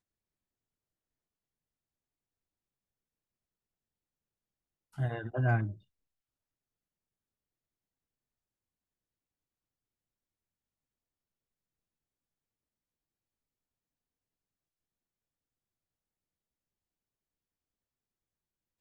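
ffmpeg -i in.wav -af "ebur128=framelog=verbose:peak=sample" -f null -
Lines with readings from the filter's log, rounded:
Integrated loudness:
  I:         -32.9 LUFS
  Threshold: -43.6 LUFS
Loudness range:
  LRA:         7.0 LU
  Threshold: -58.6 LUFS
  LRA low:   -44.6 LUFS
  LRA high:  -37.6 LUFS
Sample peak:
  Peak:      -17.7 dBFS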